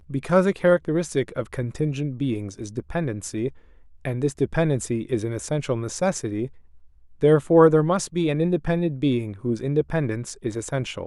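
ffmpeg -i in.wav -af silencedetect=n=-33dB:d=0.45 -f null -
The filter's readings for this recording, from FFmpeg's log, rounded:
silence_start: 3.49
silence_end: 4.05 | silence_duration: 0.57
silence_start: 6.47
silence_end: 7.21 | silence_duration: 0.74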